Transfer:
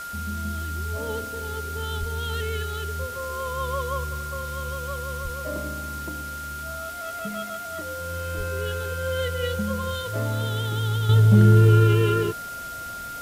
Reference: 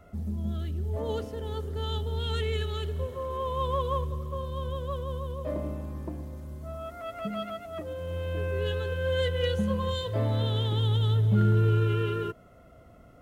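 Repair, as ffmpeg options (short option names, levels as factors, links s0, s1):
-filter_complex "[0:a]bandreject=f=1400:w=30,asplit=3[s0][s1][s2];[s0]afade=t=out:st=1.99:d=0.02[s3];[s1]highpass=f=140:w=0.5412,highpass=f=140:w=1.3066,afade=t=in:st=1.99:d=0.02,afade=t=out:st=2.11:d=0.02[s4];[s2]afade=t=in:st=2.11:d=0.02[s5];[s3][s4][s5]amix=inputs=3:normalize=0,asplit=3[s6][s7][s8];[s6]afade=t=out:st=5.23:d=0.02[s9];[s7]highpass=f=140:w=0.5412,highpass=f=140:w=1.3066,afade=t=in:st=5.23:d=0.02,afade=t=out:st=5.35:d=0.02[s10];[s8]afade=t=in:st=5.35:d=0.02[s11];[s9][s10][s11]amix=inputs=3:normalize=0,asplit=3[s12][s13][s14];[s12]afade=t=out:st=8.37:d=0.02[s15];[s13]highpass=f=140:w=0.5412,highpass=f=140:w=1.3066,afade=t=in:st=8.37:d=0.02,afade=t=out:st=8.49:d=0.02[s16];[s14]afade=t=in:st=8.49:d=0.02[s17];[s15][s16][s17]amix=inputs=3:normalize=0,afwtdn=0.0079,asetnsamples=n=441:p=0,asendcmd='11.09 volume volume -8dB',volume=1"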